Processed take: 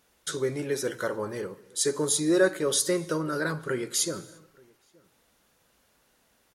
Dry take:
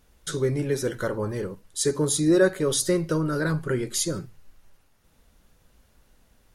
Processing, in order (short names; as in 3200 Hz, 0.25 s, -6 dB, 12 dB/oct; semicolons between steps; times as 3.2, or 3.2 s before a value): HPF 410 Hz 6 dB/oct; outdoor echo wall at 150 m, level -27 dB; on a send at -20 dB: reverb, pre-delay 63 ms